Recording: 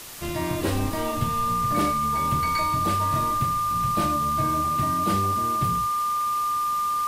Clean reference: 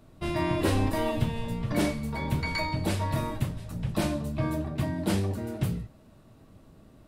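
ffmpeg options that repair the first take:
-af "adeclick=t=4,bandreject=f=1.2k:w=30,afwtdn=0.011"

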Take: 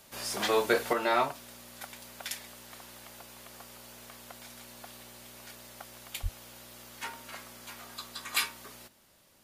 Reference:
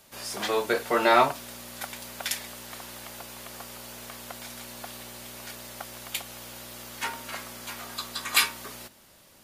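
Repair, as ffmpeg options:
-filter_complex "[0:a]asplit=3[a][b][c];[a]afade=t=out:st=6.22:d=0.02[d];[b]highpass=f=140:w=0.5412,highpass=f=140:w=1.3066,afade=t=in:st=6.22:d=0.02,afade=t=out:st=6.34:d=0.02[e];[c]afade=t=in:st=6.34:d=0.02[f];[d][e][f]amix=inputs=3:normalize=0,asetnsamples=n=441:p=0,asendcmd='0.93 volume volume 7.5dB',volume=0dB"

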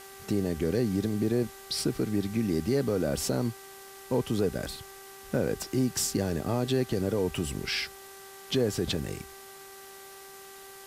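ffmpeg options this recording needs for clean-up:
-af "bandreject=f=390.5:t=h:w=4,bandreject=f=781:t=h:w=4,bandreject=f=1.1715k:t=h:w=4,bandreject=f=1.562k:t=h:w=4,bandreject=f=1.9525k:t=h:w=4,afwtdn=0.0035"

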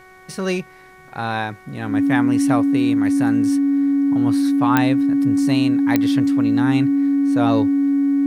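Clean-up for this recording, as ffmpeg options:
-af "adeclick=t=4,bandreject=f=372.3:t=h:w=4,bandreject=f=744.6:t=h:w=4,bandreject=f=1.1169k:t=h:w=4,bandreject=f=1.4892k:t=h:w=4,bandreject=f=1.8615k:t=h:w=4,bandreject=f=2.2338k:t=h:w=4,bandreject=f=280:w=30,agate=range=-21dB:threshold=-36dB"

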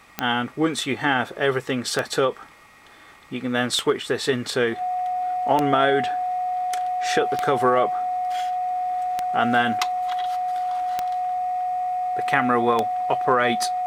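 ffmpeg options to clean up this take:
-af "adeclick=t=4,bandreject=f=730:w=30"

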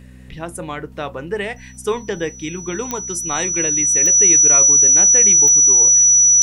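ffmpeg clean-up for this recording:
-af "adeclick=t=4,bandreject=f=63.2:t=h:w=4,bandreject=f=126.4:t=h:w=4,bandreject=f=189.6:t=h:w=4,bandreject=f=252.8:t=h:w=4,bandreject=f=5.9k:w=30"

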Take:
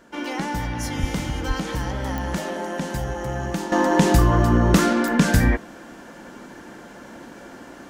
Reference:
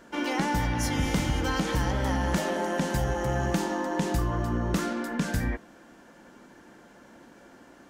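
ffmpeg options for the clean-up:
-filter_complex "[0:a]adeclick=t=4,asplit=3[a][b][c];[a]afade=t=out:st=1:d=0.02[d];[b]highpass=f=140:w=0.5412,highpass=f=140:w=1.3066,afade=t=in:st=1:d=0.02,afade=t=out:st=1.12:d=0.02[e];[c]afade=t=in:st=1.12:d=0.02[f];[d][e][f]amix=inputs=3:normalize=0,asplit=3[g][h][i];[g]afade=t=out:st=1.47:d=0.02[j];[h]highpass=f=140:w=0.5412,highpass=f=140:w=1.3066,afade=t=in:st=1.47:d=0.02,afade=t=out:st=1.59:d=0.02[k];[i]afade=t=in:st=1.59:d=0.02[l];[j][k][l]amix=inputs=3:normalize=0,asetnsamples=n=441:p=0,asendcmd='3.72 volume volume -11dB',volume=0dB"

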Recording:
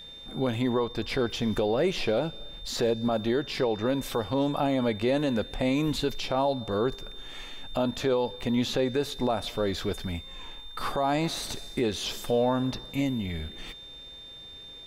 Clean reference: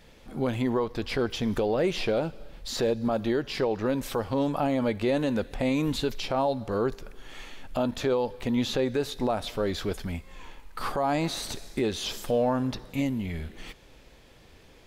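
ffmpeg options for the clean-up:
-af "bandreject=f=3.6k:w=30"

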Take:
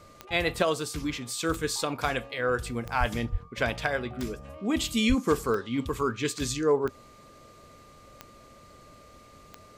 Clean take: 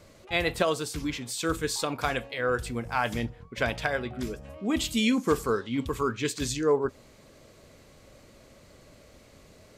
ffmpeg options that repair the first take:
-filter_complex "[0:a]adeclick=t=4,bandreject=f=1.2k:w=30,asplit=3[a][b][c];[a]afade=t=out:st=2.99:d=0.02[d];[b]highpass=f=140:w=0.5412,highpass=f=140:w=1.3066,afade=t=in:st=2.99:d=0.02,afade=t=out:st=3.11:d=0.02[e];[c]afade=t=in:st=3.11:d=0.02[f];[d][e][f]amix=inputs=3:normalize=0,asplit=3[g][h][i];[g]afade=t=out:st=3.31:d=0.02[j];[h]highpass=f=140:w=0.5412,highpass=f=140:w=1.3066,afade=t=in:st=3.31:d=0.02,afade=t=out:st=3.43:d=0.02[k];[i]afade=t=in:st=3.43:d=0.02[l];[j][k][l]amix=inputs=3:normalize=0,asplit=3[m][n][o];[m]afade=t=out:st=5.08:d=0.02[p];[n]highpass=f=140:w=0.5412,highpass=f=140:w=1.3066,afade=t=in:st=5.08:d=0.02,afade=t=out:st=5.2:d=0.02[q];[o]afade=t=in:st=5.2:d=0.02[r];[p][q][r]amix=inputs=3:normalize=0"

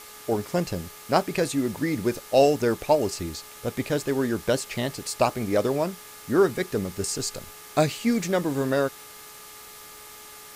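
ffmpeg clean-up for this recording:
-af "adeclick=t=4,bandreject=f=423.6:t=h:w=4,bandreject=f=847.2:t=h:w=4,bandreject=f=1.2708k:t=h:w=4,bandreject=f=1.6944k:t=h:w=4,bandreject=f=2.118k:t=h:w=4,bandreject=f=1.2k:w=30,afwtdn=0.0063"

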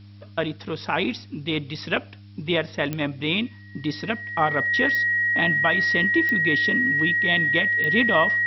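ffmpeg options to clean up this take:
-af "adeclick=t=4,bandreject=f=100.9:t=h:w=4,bandreject=f=201.8:t=h:w=4,bandreject=f=302.7:t=h:w=4,bandreject=f=1.9k:w=30,agate=range=-21dB:threshold=-36dB"

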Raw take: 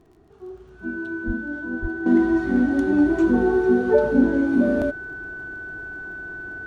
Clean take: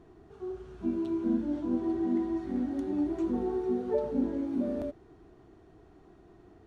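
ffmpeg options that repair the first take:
-filter_complex "[0:a]adeclick=t=4,bandreject=f=1.5k:w=30,asplit=3[a][b][c];[a]afade=t=out:st=1.26:d=0.02[d];[b]highpass=f=140:w=0.5412,highpass=f=140:w=1.3066,afade=t=in:st=1.26:d=0.02,afade=t=out:st=1.38:d=0.02[e];[c]afade=t=in:st=1.38:d=0.02[f];[d][e][f]amix=inputs=3:normalize=0,asplit=3[g][h][i];[g]afade=t=out:st=1.81:d=0.02[j];[h]highpass=f=140:w=0.5412,highpass=f=140:w=1.3066,afade=t=in:st=1.81:d=0.02,afade=t=out:st=1.93:d=0.02[k];[i]afade=t=in:st=1.93:d=0.02[l];[j][k][l]amix=inputs=3:normalize=0,asetnsamples=n=441:p=0,asendcmd='2.06 volume volume -12dB',volume=0dB"

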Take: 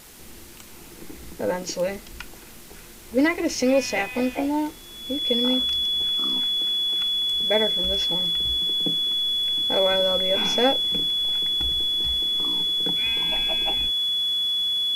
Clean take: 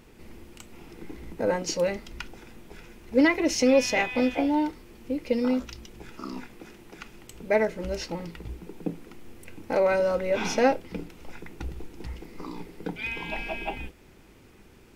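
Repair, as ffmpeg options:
-af "adeclick=t=4,bandreject=f=3.4k:w=30,afwtdn=0.005"

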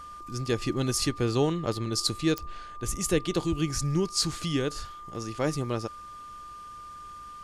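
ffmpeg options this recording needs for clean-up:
-af "adeclick=t=4,bandreject=f=1.2k:w=30"

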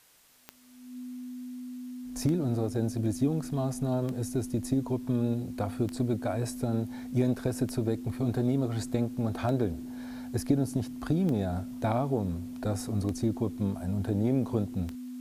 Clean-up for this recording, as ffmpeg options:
-af "adeclick=t=4,bandreject=f=250:w=30,agate=range=-21dB:threshold=-32dB"

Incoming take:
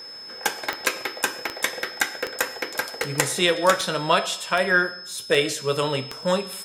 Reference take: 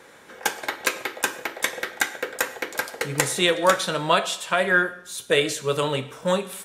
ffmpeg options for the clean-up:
-af "adeclick=t=4,bandreject=f=5.2k:w=30"

